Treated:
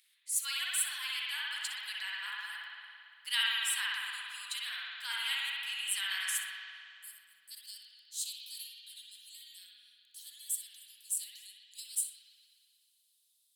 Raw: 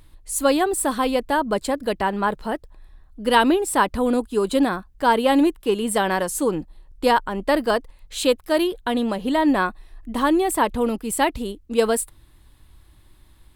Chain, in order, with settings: inverse Chebyshev high-pass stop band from 470 Hz, stop band 70 dB, from 6.37 s stop band from 2100 Hz, from 7.5 s stop band from 1100 Hz; flutter echo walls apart 10.5 m, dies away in 0.3 s; spring tank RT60 2.3 s, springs 54 ms, chirp 80 ms, DRR -5.5 dB; gain -6 dB

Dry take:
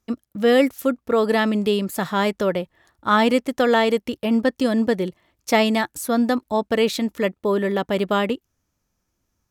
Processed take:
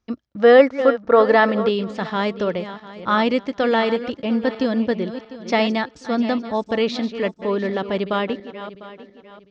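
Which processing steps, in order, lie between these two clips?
regenerating reverse delay 0.35 s, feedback 54%, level -12 dB; steep low-pass 5600 Hz 36 dB/oct; 0.39–1.69 band shelf 920 Hz +8.5 dB 2.3 oct; gain -1.5 dB

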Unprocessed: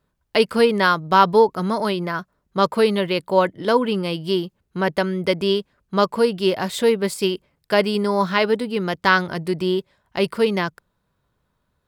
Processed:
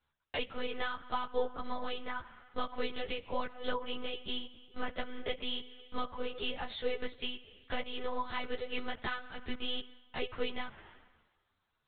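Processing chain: tilt +4 dB/oct; spring tank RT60 1.2 s, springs 42/47 ms, chirp 70 ms, DRR 16.5 dB; compressor 5:1, threshold -29 dBFS, peak gain reduction 19.5 dB; dynamic EQ 470 Hz, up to +6 dB, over -45 dBFS, Q 1.1; monotone LPC vocoder at 8 kHz 250 Hz; ensemble effect; gain -4 dB

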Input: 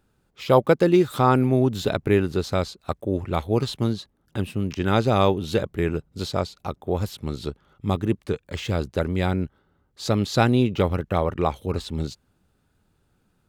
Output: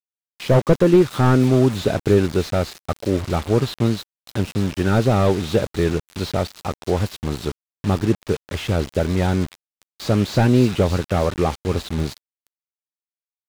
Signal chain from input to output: thin delay 0.299 s, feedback 62%, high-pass 4200 Hz, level -6.5 dB; bit-crush 6-bit; slew limiter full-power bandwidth 85 Hz; gain +4.5 dB

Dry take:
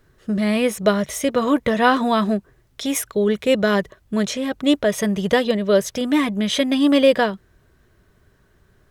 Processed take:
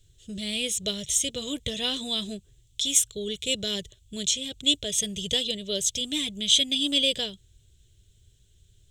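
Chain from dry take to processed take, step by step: EQ curve 110 Hz 0 dB, 210 Hz -16 dB, 440 Hz -14 dB, 1100 Hz -29 dB, 1800 Hz -20 dB, 3400 Hz +8 dB, 4800 Hz -3 dB, 7500 Hz +11 dB, 11000 Hz -5 dB

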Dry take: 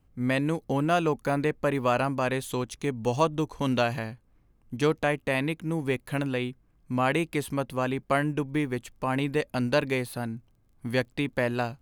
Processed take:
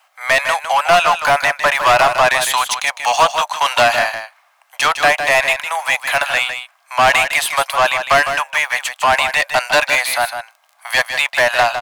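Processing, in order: steep high-pass 630 Hz 72 dB/oct; overdrive pedal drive 23 dB, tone 6000 Hz, clips at -12.5 dBFS; echo 0.156 s -8.5 dB; gain +8.5 dB

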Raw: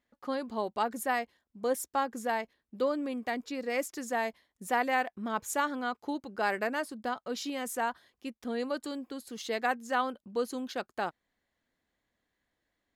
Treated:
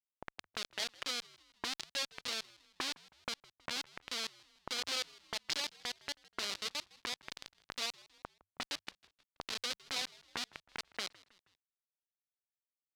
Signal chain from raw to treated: de-hum 156.2 Hz, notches 16; upward compressor, threshold -33 dBFS; formant shift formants -6 st; Schmitt trigger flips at -28.5 dBFS; auto-wah 660–4300 Hz, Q 2, up, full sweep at -36 dBFS; on a send: frequency-shifting echo 0.159 s, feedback 48%, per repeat -100 Hz, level -22.5 dB; on the sum: gain +14 dB

